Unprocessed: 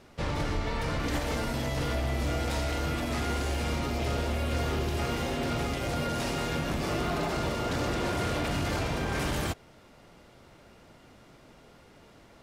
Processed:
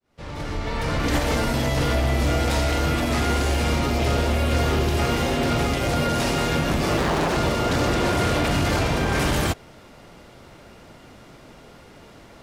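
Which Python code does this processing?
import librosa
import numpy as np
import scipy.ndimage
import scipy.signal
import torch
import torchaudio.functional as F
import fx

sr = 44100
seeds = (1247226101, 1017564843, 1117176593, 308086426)

y = fx.fade_in_head(x, sr, length_s=1.15)
y = fx.doppler_dist(y, sr, depth_ms=0.84, at=(6.97, 7.37))
y = F.gain(torch.from_numpy(y), 8.5).numpy()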